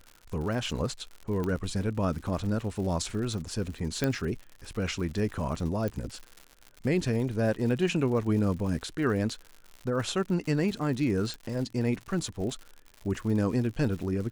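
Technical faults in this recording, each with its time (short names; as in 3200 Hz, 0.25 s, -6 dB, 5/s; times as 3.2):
crackle 120/s -37 dBFS
1.44 pop -20 dBFS
4.04 pop -13 dBFS
5.88 pop -20 dBFS
11.34 pop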